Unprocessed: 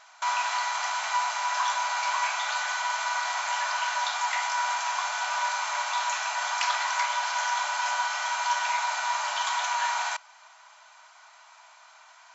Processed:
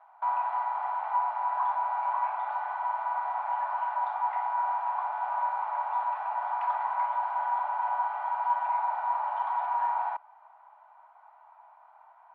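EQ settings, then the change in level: resonant low-pass 830 Hz, resonance Q 4.3; distance through air 380 m; tilt EQ +4.5 dB/octave; -4.5 dB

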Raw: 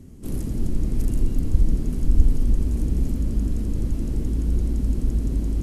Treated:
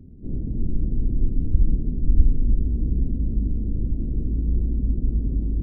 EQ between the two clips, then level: Gaussian low-pass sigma 17 samples; 0.0 dB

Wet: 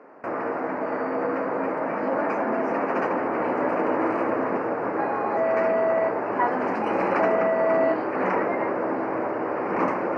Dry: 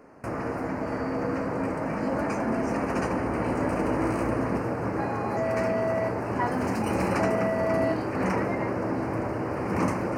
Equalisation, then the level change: band-pass 360–2100 Hz; +5.5 dB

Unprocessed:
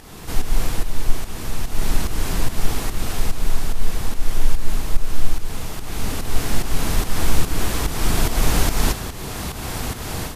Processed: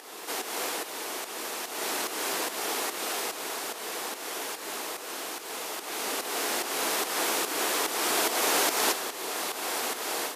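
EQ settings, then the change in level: high-pass 360 Hz 24 dB/octave; 0.0 dB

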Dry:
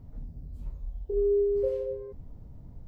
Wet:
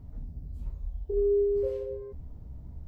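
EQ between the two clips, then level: peaking EQ 67 Hz +9.5 dB 0.34 oct; band-stop 510 Hz, Q 12; 0.0 dB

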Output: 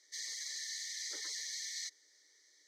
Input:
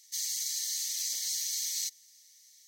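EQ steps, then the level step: high-pass 290 Hz; low-pass 1.8 kHz 12 dB/octave; static phaser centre 720 Hz, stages 6; +15.0 dB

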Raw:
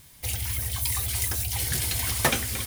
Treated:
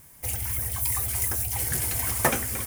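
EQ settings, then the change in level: bass shelf 200 Hz -6 dB; peaking EQ 3.8 kHz -14 dB 1.2 oct; +3.0 dB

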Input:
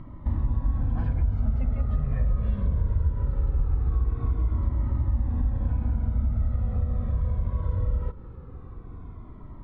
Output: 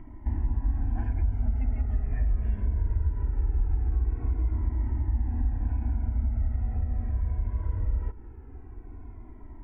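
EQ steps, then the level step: static phaser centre 790 Hz, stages 8; 0.0 dB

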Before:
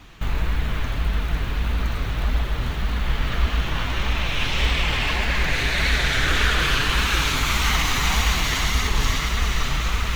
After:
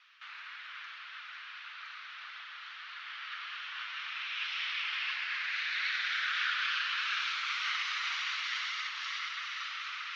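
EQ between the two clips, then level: elliptic band-pass 1.3–5.4 kHz, stop band 80 dB; distance through air 89 m; -8.0 dB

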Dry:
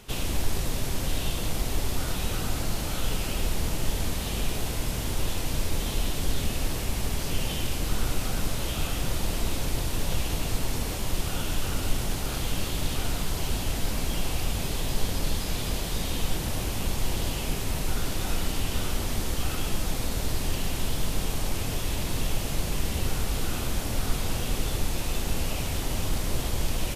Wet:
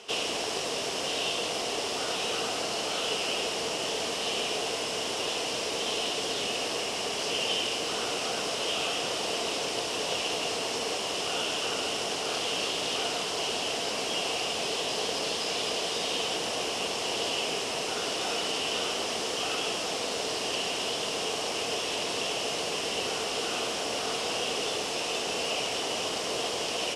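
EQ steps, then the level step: cabinet simulation 340–9200 Hz, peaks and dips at 450 Hz +9 dB, 690 Hz +7 dB, 1.1 kHz +4 dB, 2.9 kHz +10 dB, 5.3 kHz +8 dB; 0.0 dB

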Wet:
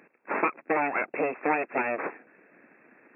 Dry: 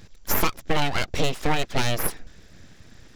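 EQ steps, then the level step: high-pass 270 Hz 24 dB/octave; brick-wall FIR low-pass 2.7 kHz; 0.0 dB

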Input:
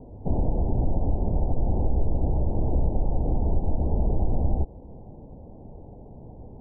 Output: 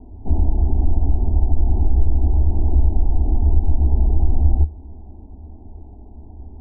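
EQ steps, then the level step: tilt EQ -1.5 dB/octave; peaking EQ 75 Hz +10.5 dB 0.47 oct; static phaser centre 520 Hz, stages 6; 0.0 dB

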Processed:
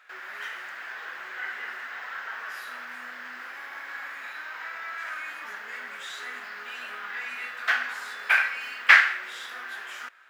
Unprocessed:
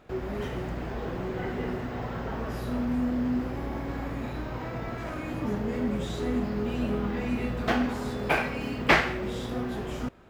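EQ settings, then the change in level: resonant high-pass 1.6 kHz, resonance Q 3.1; +1.0 dB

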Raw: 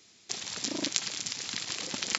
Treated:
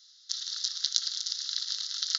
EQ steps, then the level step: elliptic high-pass 1.3 kHz, stop band 50 dB; high-order bell 5 kHz +12 dB 1.2 oct; static phaser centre 2.4 kHz, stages 6; -5.5 dB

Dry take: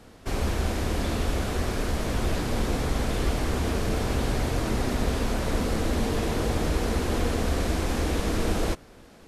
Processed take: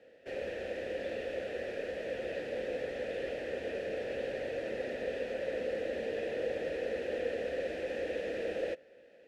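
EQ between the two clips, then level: vowel filter e; +3.5 dB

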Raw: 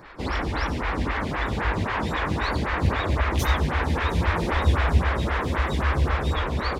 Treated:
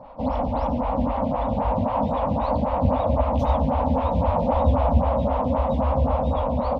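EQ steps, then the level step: FFT filter 170 Hz 0 dB, 260 Hz +10 dB, 370 Hz -23 dB, 530 Hz +12 dB, 940 Hz +6 dB, 1.7 kHz -22 dB, 2.8 kHz -10 dB, 5.7 kHz -18 dB, 10 kHz -28 dB; 0.0 dB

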